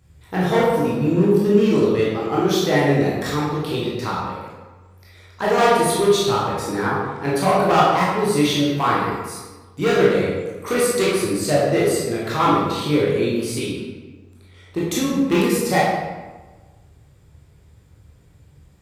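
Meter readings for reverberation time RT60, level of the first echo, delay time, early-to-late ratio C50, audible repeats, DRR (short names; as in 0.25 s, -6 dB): 1.3 s, none, none, -1.0 dB, none, -7.0 dB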